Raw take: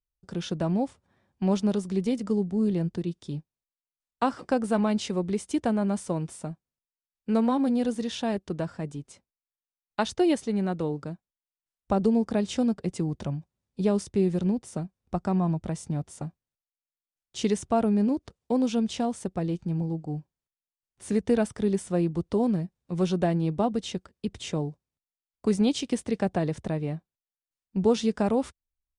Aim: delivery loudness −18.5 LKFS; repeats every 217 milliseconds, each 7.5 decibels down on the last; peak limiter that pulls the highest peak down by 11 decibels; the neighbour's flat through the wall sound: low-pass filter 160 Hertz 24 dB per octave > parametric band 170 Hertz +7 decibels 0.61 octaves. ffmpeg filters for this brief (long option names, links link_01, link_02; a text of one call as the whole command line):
ffmpeg -i in.wav -af "alimiter=limit=-23dB:level=0:latency=1,lowpass=frequency=160:width=0.5412,lowpass=frequency=160:width=1.3066,equalizer=frequency=170:width_type=o:width=0.61:gain=7,aecho=1:1:217|434|651|868|1085:0.422|0.177|0.0744|0.0312|0.0131,volume=16dB" out.wav